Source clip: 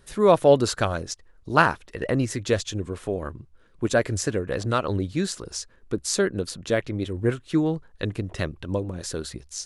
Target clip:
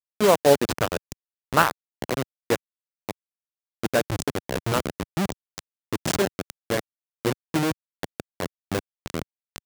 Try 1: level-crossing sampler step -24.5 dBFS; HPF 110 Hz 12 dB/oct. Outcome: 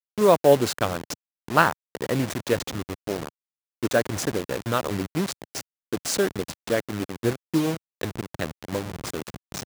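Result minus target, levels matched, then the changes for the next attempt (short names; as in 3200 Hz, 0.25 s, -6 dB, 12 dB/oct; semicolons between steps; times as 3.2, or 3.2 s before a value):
level-crossing sampler: distortion -11 dB
change: level-crossing sampler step -16 dBFS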